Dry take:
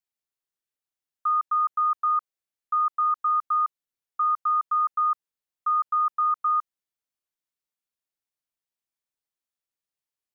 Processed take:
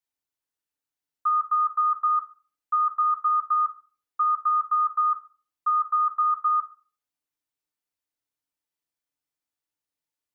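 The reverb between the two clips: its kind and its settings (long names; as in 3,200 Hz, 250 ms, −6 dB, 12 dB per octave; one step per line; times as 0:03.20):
feedback delay network reverb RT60 0.37 s, low-frequency decay 1.2×, high-frequency decay 0.6×, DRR 1 dB
level −1.5 dB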